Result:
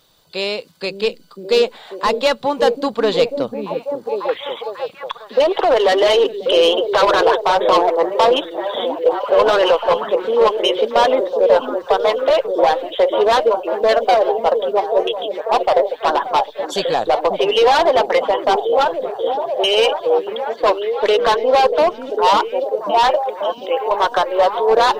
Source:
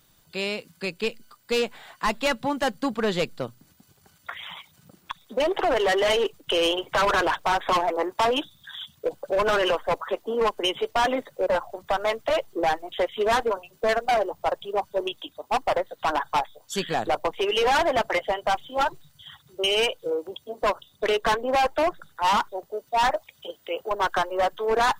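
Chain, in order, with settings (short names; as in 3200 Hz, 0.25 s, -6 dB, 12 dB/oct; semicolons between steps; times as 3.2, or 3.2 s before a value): graphic EQ 500/1000/4000 Hz +11/+6/+11 dB; delay with a stepping band-pass 0.543 s, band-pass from 240 Hz, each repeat 0.7 oct, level -1.5 dB; gain -1 dB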